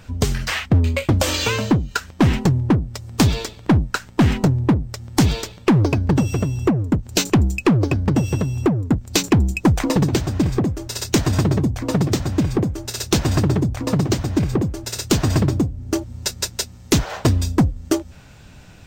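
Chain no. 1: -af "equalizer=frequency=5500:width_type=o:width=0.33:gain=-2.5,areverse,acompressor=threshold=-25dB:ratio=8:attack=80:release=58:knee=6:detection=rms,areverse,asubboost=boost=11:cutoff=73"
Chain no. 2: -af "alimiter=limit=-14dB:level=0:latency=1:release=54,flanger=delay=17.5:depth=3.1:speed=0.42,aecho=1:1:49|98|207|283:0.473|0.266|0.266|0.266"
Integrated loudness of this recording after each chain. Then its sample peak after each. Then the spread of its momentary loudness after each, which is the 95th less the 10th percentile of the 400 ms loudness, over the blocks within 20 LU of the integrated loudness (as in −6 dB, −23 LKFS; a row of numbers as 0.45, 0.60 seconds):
−19.0, −25.0 LKFS; −1.5, −10.0 dBFS; 8, 6 LU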